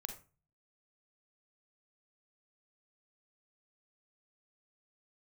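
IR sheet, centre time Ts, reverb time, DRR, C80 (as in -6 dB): 15 ms, 0.35 s, 5.0 dB, 15.0 dB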